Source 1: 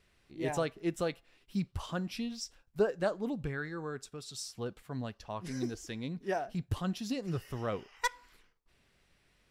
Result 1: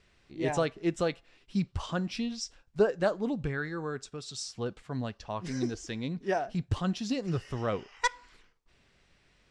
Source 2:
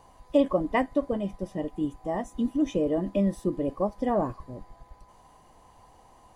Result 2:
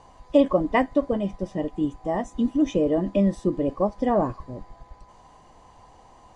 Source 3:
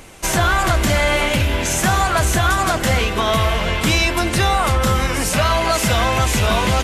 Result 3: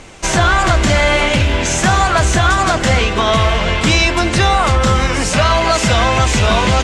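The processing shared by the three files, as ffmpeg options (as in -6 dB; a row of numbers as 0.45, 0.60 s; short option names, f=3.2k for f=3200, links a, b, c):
-af "lowpass=f=8k:w=0.5412,lowpass=f=8k:w=1.3066,volume=4dB"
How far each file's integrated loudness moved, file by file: +4.0, +4.0, +4.0 LU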